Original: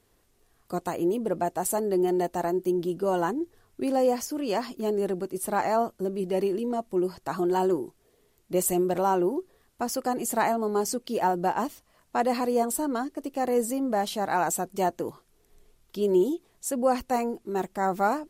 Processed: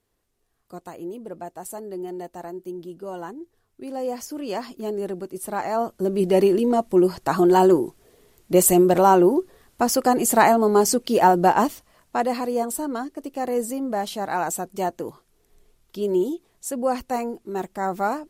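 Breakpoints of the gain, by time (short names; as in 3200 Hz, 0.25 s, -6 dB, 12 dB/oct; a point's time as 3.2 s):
3.82 s -8 dB
4.31 s -1 dB
5.68 s -1 dB
6.21 s +9 dB
11.62 s +9 dB
12.38 s +0.5 dB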